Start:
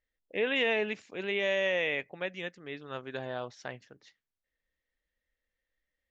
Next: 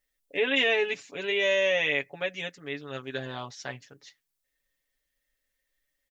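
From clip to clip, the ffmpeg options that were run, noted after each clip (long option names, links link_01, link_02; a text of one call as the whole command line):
ffmpeg -i in.wav -af "highshelf=frequency=4200:gain=12,aecho=1:1:7.1:0.83" out.wav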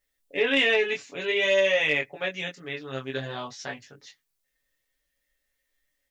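ffmpeg -i in.wav -af "flanger=delay=20:depth=3:speed=0.53,asoftclip=type=tanh:threshold=-14dB,volume=5.5dB" out.wav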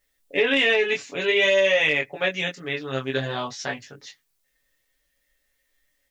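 ffmpeg -i in.wav -af "alimiter=limit=-16dB:level=0:latency=1:release=254,volume=6dB" out.wav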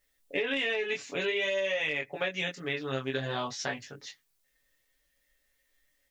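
ffmpeg -i in.wav -af "acompressor=threshold=-26dB:ratio=5,volume=-2dB" out.wav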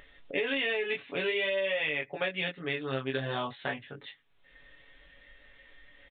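ffmpeg -i in.wav -af "acompressor=mode=upward:threshold=-36dB:ratio=2.5,aresample=8000,aresample=44100" out.wav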